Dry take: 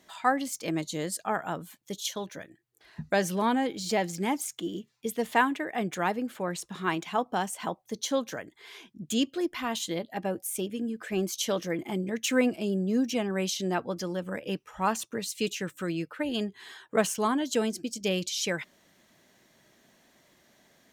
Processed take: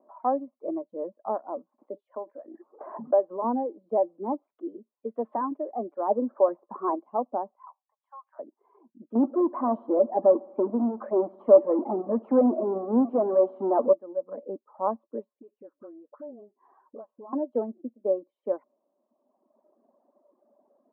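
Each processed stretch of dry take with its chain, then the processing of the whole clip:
1.78–3.44 s: high-pass 500 Hz 6 dB/octave + band-stop 3.3 kHz, Q 22 + swell ahead of each attack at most 29 dB/s
4.32–5.51 s: frequency weighting D + hard clipper -19 dBFS
6.09–6.95 s: Butterworth band-stop 3.5 kHz, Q 1 + overdrive pedal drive 20 dB, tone 2 kHz, clips at -14.5 dBFS
7.55–8.39 s: steep high-pass 880 Hz 48 dB/octave + compression 2.5:1, threshold -38 dBFS
9.15–13.93 s: power-law waveshaper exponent 0.5 + bucket-brigade echo 72 ms, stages 1024, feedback 67%, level -15 dB
15.39–17.33 s: compression, threshold -41 dBFS + phase dispersion highs, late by 44 ms, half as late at 790 Hz
whole clip: Chebyshev band-pass 230–1100 Hz, order 4; reverb removal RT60 1.5 s; peaking EQ 580 Hz +12 dB 0.21 oct

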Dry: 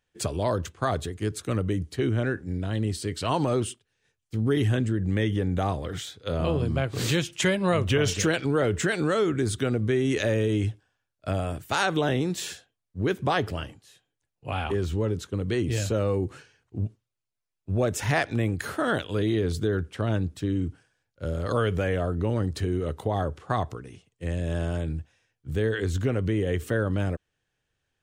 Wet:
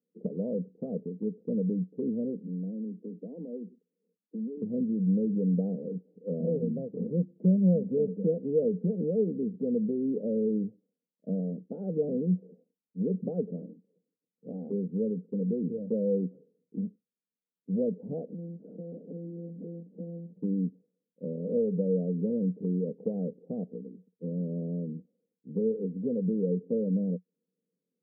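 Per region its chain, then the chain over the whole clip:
2.46–4.62 s: steep high-pass 170 Hz 96 dB/octave + compression 3:1, threshold -36 dBFS
18.26–20.38 s: block-companded coder 3-bit + compression 5:1, threshold -33 dBFS + monotone LPC vocoder at 8 kHz 170 Hz
whole clip: Chebyshev band-pass 180–480 Hz, order 4; comb 1.4 ms, depth 77%; dynamic bell 310 Hz, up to -8 dB, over -48 dBFS, Q 2.5; trim +5.5 dB

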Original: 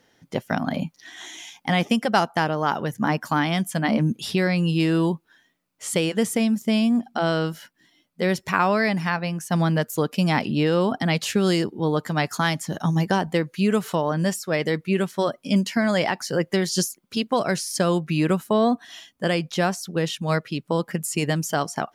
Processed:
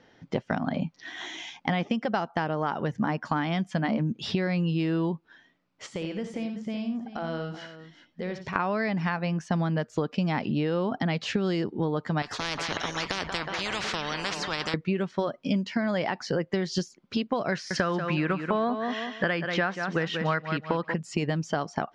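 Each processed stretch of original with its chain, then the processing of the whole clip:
5.86–8.56 s: compression 3:1, threshold -39 dBFS + multi-tap echo 61/89/381 ms -10.5/-10.5/-13.5 dB
12.22–14.74 s: feedback echo behind a low-pass 183 ms, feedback 66%, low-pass 3.3 kHz, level -20 dB + spectrum-flattening compressor 10:1
17.52–20.94 s: peaking EQ 1.6 kHz +12 dB 1.4 oct + feedback delay 186 ms, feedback 25%, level -10 dB
whole clip: low-pass 5.9 kHz 24 dB/octave; treble shelf 4.2 kHz -10.5 dB; compression 6:1, threshold -29 dBFS; trim +4.5 dB

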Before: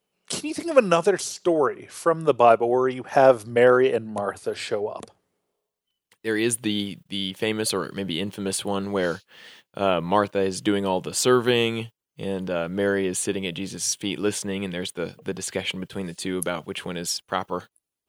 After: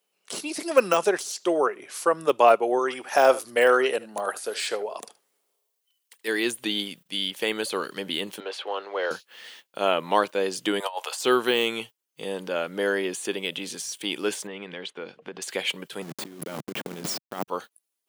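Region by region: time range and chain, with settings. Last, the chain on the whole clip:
2.79–6.28 s: tilt EQ +1.5 dB/octave + delay 76 ms -18.5 dB
8.40–9.11 s: companding laws mixed up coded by mu + high-pass 430 Hz 24 dB/octave + distance through air 260 m
10.80–11.21 s: high-pass 650 Hz 24 dB/octave + peaking EQ 830 Hz +5 dB 0.98 oct + compressor with a negative ratio -28 dBFS, ratio -0.5
14.47–15.42 s: low-pass 3 kHz + compression 5:1, threshold -29 dBFS
16.02–17.48 s: send-on-delta sampling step -29.5 dBFS + peaking EQ 160 Hz +15 dB 2.5 oct + compressor with a negative ratio -25 dBFS, ratio -0.5
whole clip: high-pass 260 Hz 12 dB/octave; de-esser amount 65%; tilt EQ +1.5 dB/octave

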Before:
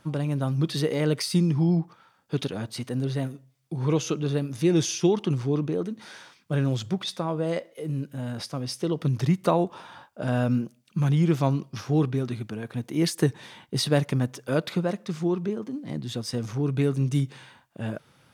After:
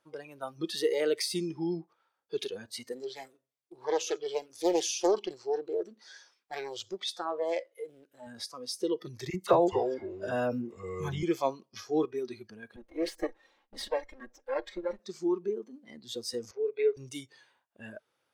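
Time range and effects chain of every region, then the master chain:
2.92–8.27 s: bass shelf 180 Hz -10 dB + delay 87 ms -24 dB + loudspeaker Doppler distortion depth 0.8 ms
9.30–11.23 s: bass shelf 220 Hz +4.5 dB + phase dispersion lows, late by 40 ms, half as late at 1.2 kHz + ever faster or slower copies 176 ms, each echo -5 st, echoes 2, each echo -6 dB
12.76–14.99 s: comb filter that takes the minimum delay 3.7 ms + low-pass 2.1 kHz 6 dB/octave + peaking EQ 120 Hz -14 dB 0.42 oct
16.51–16.97 s: cabinet simulation 460–4100 Hz, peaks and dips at 460 Hz +8 dB, 930 Hz -4 dB, 1.3 kHz -5 dB, 1.9 kHz +6 dB, 3.1 kHz -7 dB + band-stop 1.8 kHz, Q 6.7
whole clip: spectral noise reduction 15 dB; resonant low shelf 270 Hz -12.5 dB, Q 1.5; trim -2.5 dB

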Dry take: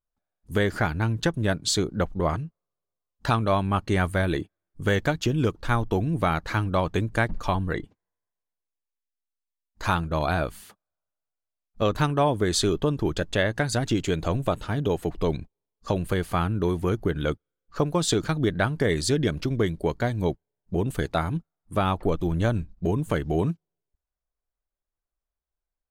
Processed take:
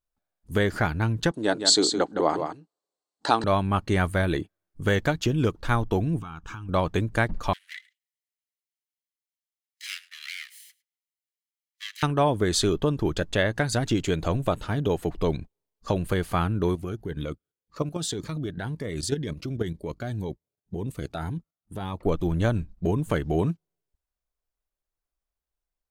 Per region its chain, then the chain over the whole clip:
1.31–3.44 s: cabinet simulation 300–9400 Hz, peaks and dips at 300 Hz +9 dB, 450 Hz +4 dB, 810 Hz +8 dB, 2.4 kHz -4 dB, 4.3 kHz +9 dB, 7.9 kHz +8 dB + delay 164 ms -7 dB
6.19–6.69 s: static phaser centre 2.9 kHz, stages 8 + compression 8:1, threshold -34 dBFS
7.53–12.03 s: comb filter that takes the minimum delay 0.97 ms + steep high-pass 1.8 kHz 48 dB/octave + delay 106 ms -23 dB
16.75–22.06 s: high-pass 41 Hz + level held to a coarse grid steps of 10 dB + Shepard-style phaser rising 1.9 Hz
whole clip: none

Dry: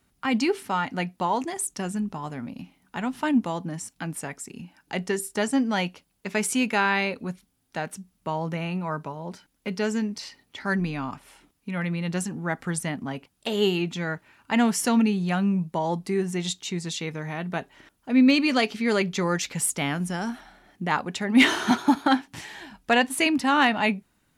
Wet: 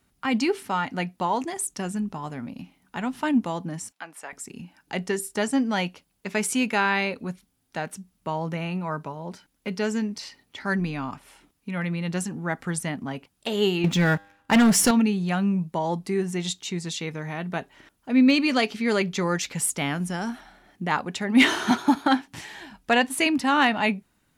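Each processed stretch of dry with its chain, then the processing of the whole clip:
3.92–4.33 s: high-pass 670 Hz + treble shelf 4.1 kHz -10 dB
13.84–14.91 s: bass shelf 150 Hz +7 dB + waveshaping leveller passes 3 + feedback comb 100 Hz, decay 0.75 s, mix 30%
whole clip: none

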